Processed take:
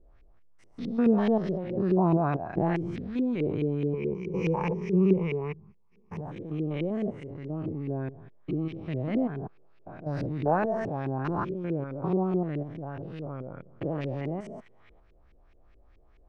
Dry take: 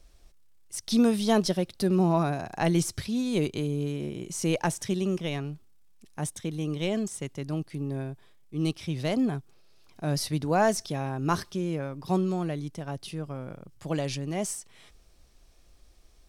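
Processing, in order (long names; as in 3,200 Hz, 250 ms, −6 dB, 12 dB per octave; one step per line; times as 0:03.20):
spectrum averaged block by block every 200 ms
0:03.93–0:06.21: EQ curve with evenly spaced ripples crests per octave 0.81, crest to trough 15 dB
auto-filter low-pass saw up 4.7 Hz 350–2,500 Hz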